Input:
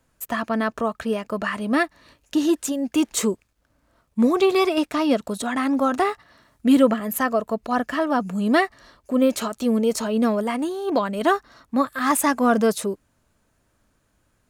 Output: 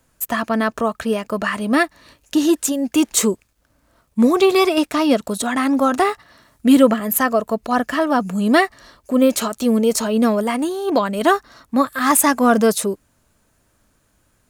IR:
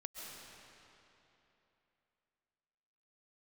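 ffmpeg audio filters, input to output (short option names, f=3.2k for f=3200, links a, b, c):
-af "highshelf=f=6k:g=6,volume=4dB"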